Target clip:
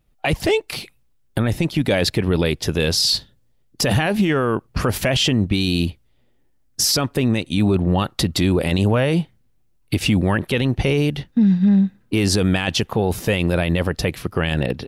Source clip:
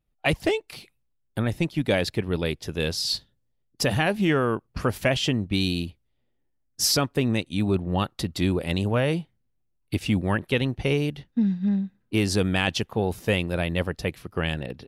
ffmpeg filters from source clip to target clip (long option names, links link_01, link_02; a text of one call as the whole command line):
ffmpeg -i in.wav -af "alimiter=level_in=21dB:limit=-1dB:release=50:level=0:latency=1,volume=-8.5dB" out.wav